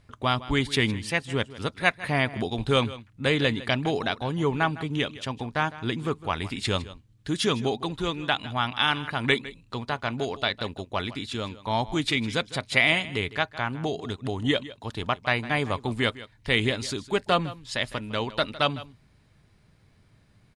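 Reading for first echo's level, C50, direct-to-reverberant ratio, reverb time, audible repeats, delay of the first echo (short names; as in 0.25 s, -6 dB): -17.0 dB, none, none, none, 1, 0.157 s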